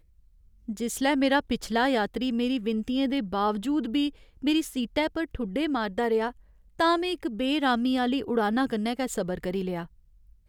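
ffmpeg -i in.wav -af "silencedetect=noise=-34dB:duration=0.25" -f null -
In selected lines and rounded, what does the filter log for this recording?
silence_start: 0.00
silence_end: 0.69 | silence_duration: 0.69
silence_start: 4.09
silence_end: 4.44 | silence_duration: 0.34
silence_start: 6.30
silence_end: 6.80 | silence_duration: 0.50
silence_start: 9.84
silence_end: 10.48 | silence_duration: 0.64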